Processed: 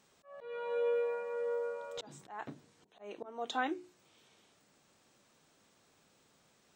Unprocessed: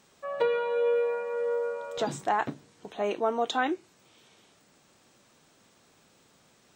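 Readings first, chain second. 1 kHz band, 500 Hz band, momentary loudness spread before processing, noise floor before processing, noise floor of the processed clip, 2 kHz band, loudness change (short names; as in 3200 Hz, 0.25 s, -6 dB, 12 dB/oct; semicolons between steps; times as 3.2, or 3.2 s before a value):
-11.0 dB, -8.5 dB, 11 LU, -63 dBFS, -70 dBFS, -8.5 dB, -8.5 dB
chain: auto swell 0.336 s; notches 60/120/180/240/300/360 Hz; gain -6.5 dB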